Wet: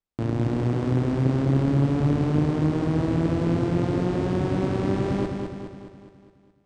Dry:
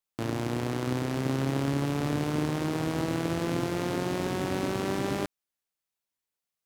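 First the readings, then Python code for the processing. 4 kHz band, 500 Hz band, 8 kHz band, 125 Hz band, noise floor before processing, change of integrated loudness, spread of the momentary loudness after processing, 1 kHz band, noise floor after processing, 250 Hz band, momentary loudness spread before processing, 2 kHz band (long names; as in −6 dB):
−4.0 dB, +4.5 dB, can't be measured, +9.0 dB, below −85 dBFS, +6.0 dB, 7 LU, +1.0 dB, −59 dBFS, +6.5 dB, 2 LU, −2.0 dB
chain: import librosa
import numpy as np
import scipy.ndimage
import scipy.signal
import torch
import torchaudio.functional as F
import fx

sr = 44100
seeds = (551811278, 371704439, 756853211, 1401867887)

y = scipy.signal.sosfilt(scipy.signal.ellip(4, 1.0, 40, 9000.0, 'lowpass', fs=sr, output='sos'), x)
y = fx.tilt_eq(y, sr, slope=-3.0)
y = fx.echo_feedback(y, sr, ms=208, feedback_pct=53, wet_db=-5.0)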